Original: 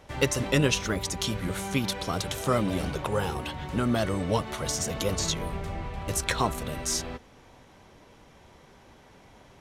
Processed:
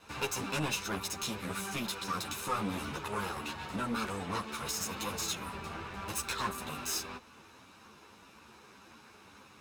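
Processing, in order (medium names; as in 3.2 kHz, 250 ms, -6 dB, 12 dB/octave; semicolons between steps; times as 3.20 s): comb filter that takes the minimum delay 0.78 ms; high-pass 320 Hz 6 dB/octave; in parallel at +2 dB: compression, threshold -42 dBFS, peak gain reduction 19 dB; on the sum: saturation -19.5 dBFS, distortion -15 dB; on a send at -17 dB: reverberation RT60 0.45 s, pre-delay 9 ms; on the sum: three-phase chorus; trim -2 dB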